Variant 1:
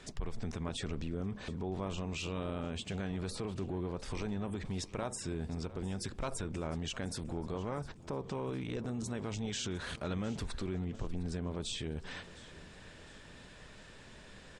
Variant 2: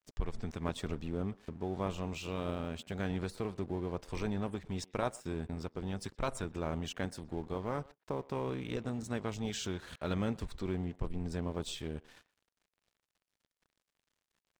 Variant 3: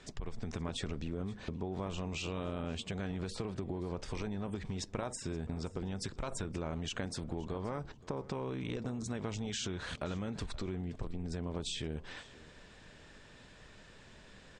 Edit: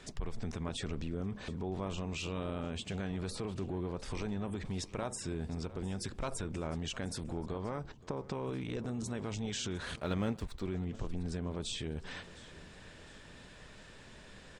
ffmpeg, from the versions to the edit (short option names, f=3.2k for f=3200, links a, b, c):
-filter_complex "[0:a]asplit=3[a][b][c];[a]atrim=end=7.462[d];[2:a]atrim=start=7.458:end=8.432[e];[b]atrim=start=8.428:end=10.012[f];[1:a]atrim=start=10.008:end=10.652[g];[c]atrim=start=10.648[h];[d][e]acrossfade=d=0.004:c1=hsin:c2=hsin[i];[i][f]acrossfade=d=0.004:c1=hsin:c2=hsin[j];[j][g]acrossfade=d=0.004:c1=hsin:c2=hsin[k];[k][h]acrossfade=d=0.004:c1=hsin:c2=hsin"